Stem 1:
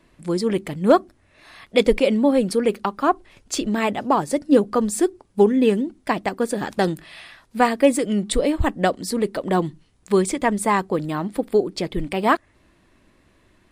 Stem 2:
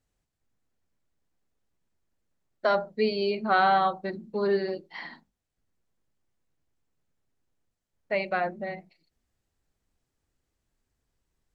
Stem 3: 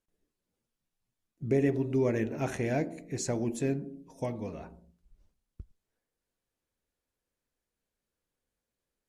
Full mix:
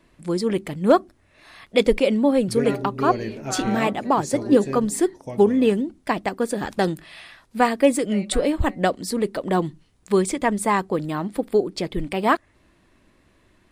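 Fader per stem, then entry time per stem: -1.0 dB, -10.0 dB, 0.0 dB; 0.00 s, 0.00 s, 1.05 s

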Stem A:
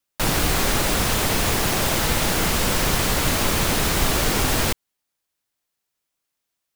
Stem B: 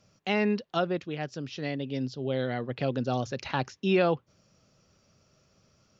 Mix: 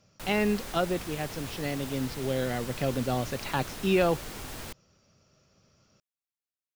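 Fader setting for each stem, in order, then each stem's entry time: -19.5 dB, 0.0 dB; 0.00 s, 0.00 s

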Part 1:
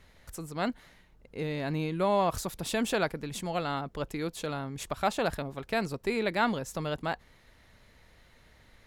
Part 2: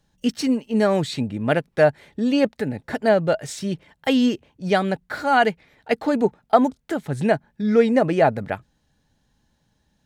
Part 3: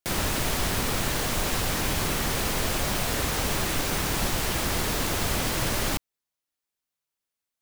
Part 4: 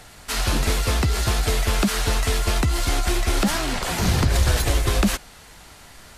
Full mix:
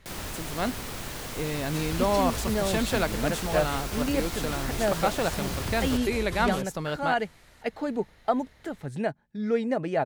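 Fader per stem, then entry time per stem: +1.5 dB, -9.5 dB, -9.5 dB, -14.5 dB; 0.00 s, 1.75 s, 0.00 s, 1.45 s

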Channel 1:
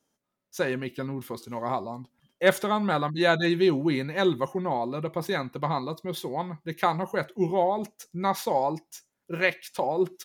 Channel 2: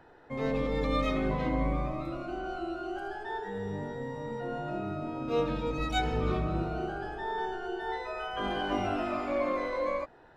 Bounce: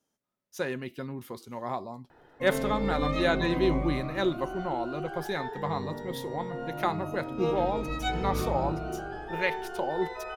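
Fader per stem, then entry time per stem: -4.5 dB, -1.0 dB; 0.00 s, 2.10 s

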